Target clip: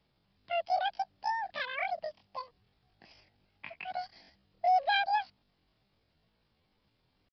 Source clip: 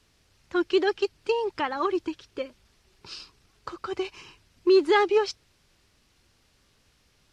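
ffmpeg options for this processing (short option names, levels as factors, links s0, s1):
-af "asetrate=85689,aresample=44100,atempo=0.514651,aresample=11025,aresample=44100,volume=0.422"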